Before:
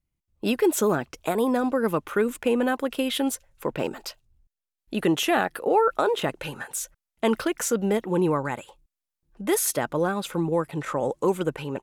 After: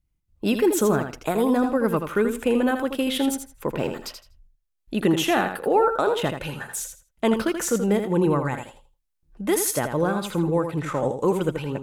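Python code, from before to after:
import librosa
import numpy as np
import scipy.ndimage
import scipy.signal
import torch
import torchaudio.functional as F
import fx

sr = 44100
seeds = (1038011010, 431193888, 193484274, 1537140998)

y = fx.low_shelf(x, sr, hz=140.0, db=9.0)
y = fx.echo_feedback(y, sr, ms=81, feedback_pct=20, wet_db=-7.5)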